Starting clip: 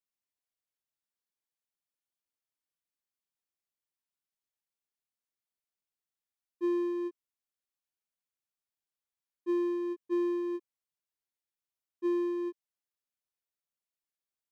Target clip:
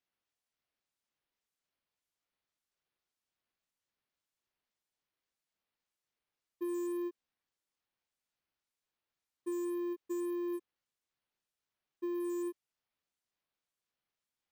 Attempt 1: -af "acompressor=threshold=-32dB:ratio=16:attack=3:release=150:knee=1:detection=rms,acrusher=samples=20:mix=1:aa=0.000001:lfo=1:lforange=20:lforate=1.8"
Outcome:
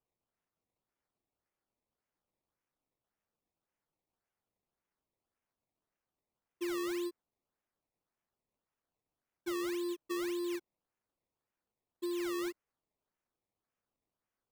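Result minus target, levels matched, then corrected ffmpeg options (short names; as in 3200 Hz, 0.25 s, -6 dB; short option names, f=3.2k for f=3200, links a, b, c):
decimation with a swept rate: distortion +16 dB
-af "acompressor=threshold=-32dB:ratio=16:attack=3:release=150:knee=1:detection=rms,acrusher=samples=4:mix=1:aa=0.000001:lfo=1:lforange=4:lforate=1.8"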